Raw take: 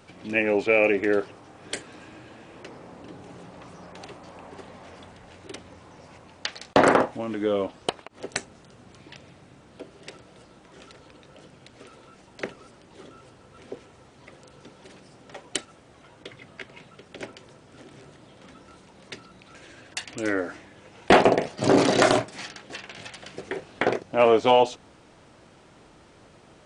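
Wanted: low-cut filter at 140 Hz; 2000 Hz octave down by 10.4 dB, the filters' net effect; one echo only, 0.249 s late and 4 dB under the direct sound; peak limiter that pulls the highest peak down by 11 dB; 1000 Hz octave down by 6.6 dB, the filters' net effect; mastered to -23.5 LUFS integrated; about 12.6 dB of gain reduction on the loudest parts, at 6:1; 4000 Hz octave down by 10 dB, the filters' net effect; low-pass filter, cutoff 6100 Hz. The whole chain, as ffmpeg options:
-af "highpass=140,lowpass=6.1k,equalizer=f=1k:t=o:g=-7.5,equalizer=f=2k:t=o:g=-8.5,equalizer=f=4k:t=o:g=-9,acompressor=threshold=-29dB:ratio=6,alimiter=level_in=1.5dB:limit=-24dB:level=0:latency=1,volume=-1.5dB,aecho=1:1:249:0.631,volume=16.5dB"

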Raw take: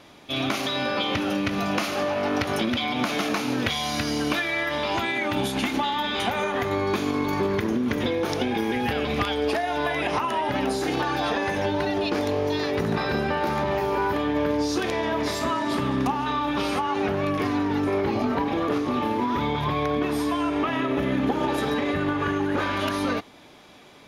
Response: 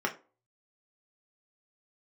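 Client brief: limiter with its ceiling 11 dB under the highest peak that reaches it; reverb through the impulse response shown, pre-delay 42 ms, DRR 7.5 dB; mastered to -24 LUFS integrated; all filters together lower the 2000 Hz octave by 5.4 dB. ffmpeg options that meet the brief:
-filter_complex "[0:a]equalizer=f=2k:t=o:g=-7,alimiter=limit=-22.5dB:level=0:latency=1,asplit=2[a][b];[1:a]atrim=start_sample=2205,adelay=42[c];[b][c]afir=irnorm=-1:irlink=0,volume=-15.5dB[d];[a][d]amix=inputs=2:normalize=0,volume=6dB"

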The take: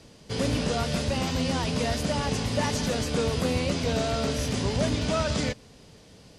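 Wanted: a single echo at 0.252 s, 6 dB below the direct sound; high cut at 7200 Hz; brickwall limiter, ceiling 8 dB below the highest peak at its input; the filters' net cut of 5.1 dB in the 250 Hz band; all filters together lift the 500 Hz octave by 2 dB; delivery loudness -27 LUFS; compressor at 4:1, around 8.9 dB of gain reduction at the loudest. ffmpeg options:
-af "lowpass=7.2k,equalizer=f=250:t=o:g=-7.5,equalizer=f=500:t=o:g=4,acompressor=threshold=-33dB:ratio=4,alimiter=level_in=6dB:limit=-24dB:level=0:latency=1,volume=-6dB,aecho=1:1:252:0.501,volume=11dB"

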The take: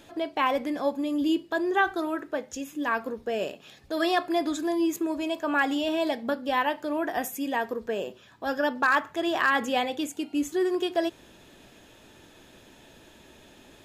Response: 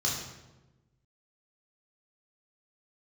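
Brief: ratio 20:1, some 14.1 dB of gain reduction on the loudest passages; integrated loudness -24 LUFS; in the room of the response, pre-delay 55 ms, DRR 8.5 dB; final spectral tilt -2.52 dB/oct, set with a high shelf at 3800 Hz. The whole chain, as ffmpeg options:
-filter_complex "[0:a]highshelf=f=3.8k:g=-4.5,acompressor=threshold=-34dB:ratio=20,asplit=2[a][b];[1:a]atrim=start_sample=2205,adelay=55[c];[b][c]afir=irnorm=-1:irlink=0,volume=-16dB[d];[a][d]amix=inputs=2:normalize=0,volume=14dB"

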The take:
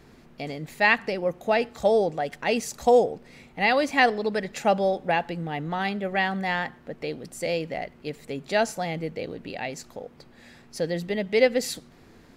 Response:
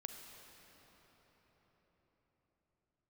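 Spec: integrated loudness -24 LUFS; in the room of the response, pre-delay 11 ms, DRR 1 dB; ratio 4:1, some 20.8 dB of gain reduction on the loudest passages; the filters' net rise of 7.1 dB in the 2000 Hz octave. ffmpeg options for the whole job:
-filter_complex "[0:a]equalizer=f=2k:t=o:g=8,acompressor=threshold=-36dB:ratio=4,asplit=2[a][b];[1:a]atrim=start_sample=2205,adelay=11[c];[b][c]afir=irnorm=-1:irlink=0,volume=2dB[d];[a][d]amix=inputs=2:normalize=0,volume=11.5dB"

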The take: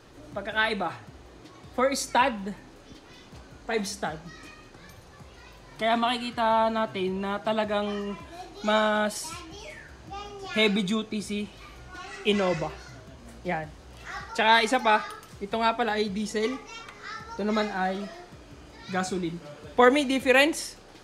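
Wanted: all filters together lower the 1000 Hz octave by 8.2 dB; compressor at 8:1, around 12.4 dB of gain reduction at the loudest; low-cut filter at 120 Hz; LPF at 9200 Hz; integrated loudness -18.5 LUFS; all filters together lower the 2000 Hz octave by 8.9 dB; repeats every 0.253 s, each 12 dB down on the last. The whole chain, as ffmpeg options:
-af "highpass=120,lowpass=9.2k,equalizer=f=1k:t=o:g=-9,equalizer=f=2k:t=o:g=-8.5,acompressor=threshold=-30dB:ratio=8,aecho=1:1:253|506|759:0.251|0.0628|0.0157,volume=18dB"

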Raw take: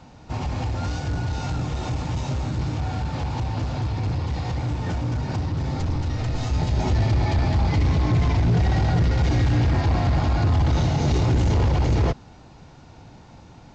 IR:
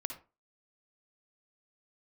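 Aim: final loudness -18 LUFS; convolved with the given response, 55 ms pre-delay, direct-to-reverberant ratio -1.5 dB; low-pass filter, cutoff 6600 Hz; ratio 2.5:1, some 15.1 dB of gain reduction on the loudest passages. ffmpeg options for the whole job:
-filter_complex "[0:a]lowpass=6.6k,acompressor=threshold=-41dB:ratio=2.5,asplit=2[a][b];[1:a]atrim=start_sample=2205,adelay=55[c];[b][c]afir=irnorm=-1:irlink=0,volume=1.5dB[d];[a][d]amix=inputs=2:normalize=0,volume=15.5dB"

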